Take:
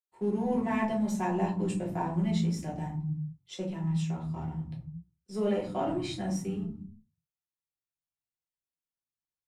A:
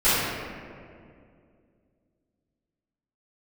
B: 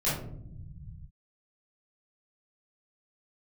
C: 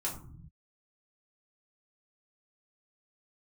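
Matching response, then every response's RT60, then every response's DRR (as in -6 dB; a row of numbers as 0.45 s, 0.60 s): C; 2.3 s, 0.75 s, 0.55 s; -17.0 dB, -11.0 dB, -5.0 dB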